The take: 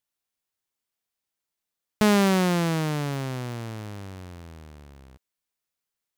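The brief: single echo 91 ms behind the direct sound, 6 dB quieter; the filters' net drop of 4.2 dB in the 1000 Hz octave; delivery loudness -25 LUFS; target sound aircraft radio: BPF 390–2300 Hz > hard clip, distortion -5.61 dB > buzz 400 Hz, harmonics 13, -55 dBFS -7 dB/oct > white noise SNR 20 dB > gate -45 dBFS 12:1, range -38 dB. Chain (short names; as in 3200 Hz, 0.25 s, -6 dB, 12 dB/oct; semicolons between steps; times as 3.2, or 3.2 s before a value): BPF 390–2300 Hz; bell 1000 Hz -5 dB; echo 91 ms -6 dB; hard clip -26.5 dBFS; buzz 400 Hz, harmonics 13, -55 dBFS -7 dB/oct; white noise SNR 20 dB; gate -45 dBFS 12:1, range -38 dB; gain +10.5 dB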